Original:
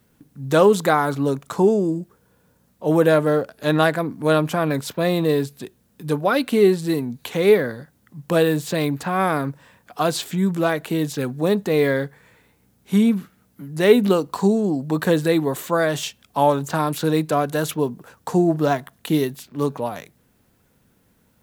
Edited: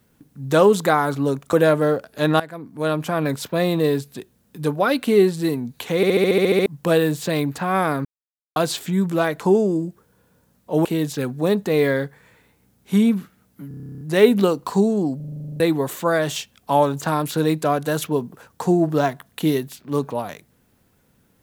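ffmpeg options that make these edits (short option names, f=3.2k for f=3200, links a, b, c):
-filter_complex "[0:a]asplit=39[a][b][c][d][e][f][g][h][i][j][k][l][m][n][o][p][q][r][s][t][u][v][w][x][y][z][aa][ab][ac][ad][ae][af][ag][ah][ai][aj][ak][al][am];[a]atrim=end=1.532[an];[b]atrim=start=2.978:end=3.85,asetpts=PTS-STARTPTS,afade=t=out:st=0.868:d=0.004:c=hsin:silence=0.125893[ao];[c]atrim=start=3.85:end=7.482,asetpts=PTS-STARTPTS,afade=t=in:d=0.89:silence=0.125893[ap];[d]atrim=start=7.408:end=7.482[aq];[e]atrim=start=7.408:end=7.482[ar];[f]atrim=start=7.408:end=7.482[as];[g]atrim=start=7.408:end=7.482[at];[h]atrim=start=7.408:end=7.482[au];[i]atrim=start=7.408:end=7.482[av];[j]atrim=start=7.408:end=7.482[aw];[k]atrim=start=7.408:end=7.482[ax];[l]atrim=start=7.408:end=7.482[ay];[m]atrim=start=8.108:end=9.5,asetpts=PTS-STARTPTS,afade=t=out:st=1.388:d=0.004:c=hsin[az];[n]atrim=start=9.5:end=10.01,asetpts=PTS-STARTPTS,volume=0[ba];[o]atrim=start=10.01:end=10.852,asetpts=PTS-STARTPTS,afade=t=in:d=0.004:c=hsin[bb];[p]atrim=start=1.528:end=2.982[bc];[q]atrim=start=10.848:end=13.712[bd];[r]atrim=start=13.678:end=13.712[be];[s]atrim=start=13.678:end=13.712[bf];[t]atrim=start=13.678:end=13.712[bg];[u]atrim=start=13.678:end=13.712[bh];[v]atrim=start=13.678:end=13.712[bi];[w]atrim=start=13.678:end=13.712[bj];[x]atrim=start=13.678:end=13.712[bk];[y]atrim=start=13.678:end=13.712[bl];[z]atrim=start=13.678:end=13.712[bm];[aa]atrim=start=13.678:end=13.712[bn];[ab]atrim=start=13.678:end=14.872[bo];[ac]atrim=start=14.828:end=14.872[bp];[ad]atrim=start=14.828:end=14.872[bq];[ae]atrim=start=14.828:end=14.872[br];[af]atrim=start=14.828:end=14.872[bs];[ag]atrim=start=14.828:end=14.872[bt];[ah]atrim=start=14.828:end=14.872[bu];[ai]atrim=start=14.828:end=14.872[bv];[aj]atrim=start=14.828:end=14.872[bw];[ak]atrim=start=14.828:end=14.872[bx];[al]atrim=start=14.828:end=14.872[by];[am]atrim=start=15.268[bz];[ao][ap]concat=n=2:v=0:a=1[ca];[an][ca]acrossfade=d=0.004:c1=hsin:c2=hsin[cb];[cb][aq]acrossfade=d=0.004:c1=hsin:c2=hsin[cc];[cc][ar]acrossfade=d=0.004:c1=hsin:c2=hsin[cd];[cd][as]acrossfade=d=0.004:c1=hsin:c2=hsin[ce];[ce][at]acrossfade=d=0.004:c1=hsin:c2=hsin[cf];[cf][au]acrossfade=d=0.004:c1=hsin:c2=hsin[cg];[cg][av]acrossfade=d=0.004:c1=hsin:c2=hsin[ch];[ch][aw]acrossfade=d=0.004:c1=hsin:c2=hsin[ci];[ci][ax]acrossfade=d=0.004:c1=hsin:c2=hsin[cj];[cj][ay]acrossfade=d=0.004:c1=hsin:c2=hsin[ck];[az][ba][bb]concat=n=3:v=0:a=1[cl];[ck][cl]acrossfade=d=0.004:c1=hsin:c2=hsin[cm];[cm][bc]acrossfade=d=0.004:c1=hsin:c2=hsin[cn];[cn][bd]acrossfade=d=0.004:c1=hsin:c2=hsin[co];[co][be]acrossfade=d=0.004:c1=hsin:c2=hsin[cp];[cp][bf]acrossfade=d=0.004:c1=hsin:c2=hsin[cq];[cq][bg]acrossfade=d=0.004:c1=hsin:c2=hsin[cr];[cr][bh]acrossfade=d=0.004:c1=hsin:c2=hsin[cs];[cs][bi]acrossfade=d=0.004:c1=hsin:c2=hsin[ct];[ct][bj]acrossfade=d=0.004:c1=hsin:c2=hsin[cu];[cu][bk]acrossfade=d=0.004:c1=hsin:c2=hsin[cv];[cv][bl]acrossfade=d=0.004:c1=hsin:c2=hsin[cw];[cw][bm]acrossfade=d=0.004:c1=hsin:c2=hsin[cx];[cx][bn]acrossfade=d=0.004:c1=hsin:c2=hsin[cy];[cy][bo]acrossfade=d=0.004:c1=hsin:c2=hsin[cz];[cz][bp]acrossfade=d=0.004:c1=hsin:c2=hsin[da];[da][bq]acrossfade=d=0.004:c1=hsin:c2=hsin[db];[db][br]acrossfade=d=0.004:c1=hsin:c2=hsin[dc];[dc][bs]acrossfade=d=0.004:c1=hsin:c2=hsin[dd];[dd][bt]acrossfade=d=0.004:c1=hsin:c2=hsin[de];[de][bu]acrossfade=d=0.004:c1=hsin:c2=hsin[df];[df][bv]acrossfade=d=0.004:c1=hsin:c2=hsin[dg];[dg][bw]acrossfade=d=0.004:c1=hsin:c2=hsin[dh];[dh][bx]acrossfade=d=0.004:c1=hsin:c2=hsin[di];[di][by]acrossfade=d=0.004:c1=hsin:c2=hsin[dj];[dj][bz]acrossfade=d=0.004:c1=hsin:c2=hsin"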